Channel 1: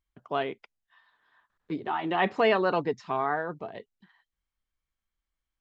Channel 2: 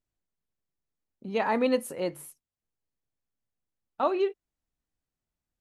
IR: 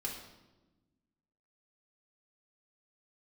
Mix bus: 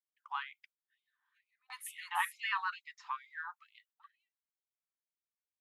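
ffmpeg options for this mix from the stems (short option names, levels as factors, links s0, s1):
-filter_complex "[0:a]agate=range=0.355:threshold=0.00141:ratio=16:detection=peak,volume=0.794,asplit=2[s0][s1];[1:a]acompressor=threshold=0.0562:ratio=6,volume=0.891[s2];[s1]apad=whole_len=247199[s3];[s2][s3]sidechaingate=range=0.0224:threshold=0.00178:ratio=16:detection=peak[s4];[s0][s4]amix=inputs=2:normalize=0,equalizer=f=4100:w=0.57:g=-6,afftfilt=real='re*gte(b*sr/1024,750*pow(2100/750,0.5+0.5*sin(2*PI*2.2*pts/sr)))':imag='im*gte(b*sr/1024,750*pow(2100/750,0.5+0.5*sin(2*PI*2.2*pts/sr)))':win_size=1024:overlap=0.75"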